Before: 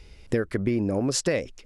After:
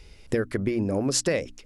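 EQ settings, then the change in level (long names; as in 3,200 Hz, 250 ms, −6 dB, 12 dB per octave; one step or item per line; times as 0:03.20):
high-shelf EQ 6,800 Hz +4.5 dB
mains-hum notches 60/120/180/240/300 Hz
0.0 dB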